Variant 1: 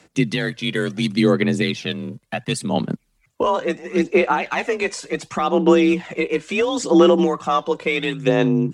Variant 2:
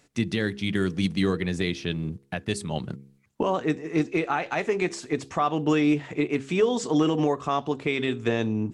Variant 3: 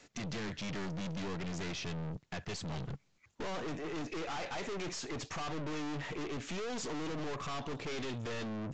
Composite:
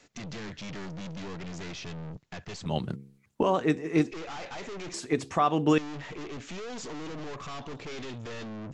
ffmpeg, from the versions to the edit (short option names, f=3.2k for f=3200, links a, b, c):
-filter_complex "[1:a]asplit=2[a][b];[2:a]asplit=3[c][d][e];[c]atrim=end=2.662[f];[a]atrim=start=2.658:end=4.112[g];[d]atrim=start=4.108:end=4.942[h];[b]atrim=start=4.938:end=5.782[i];[e]atrim=start=5.778[j];[f][g]acrossfade=d=0.004:c1=hsin:c2=hsin[k];[k][h]acrossfade=d=0.004:c1=hsin:c2=hsin[l];[l][i]acrossfade=d=0.004:c1=hsin:c2=hsin[m];[m][j]acrossfade=d=0.004:c1=hsin:c2=hsin"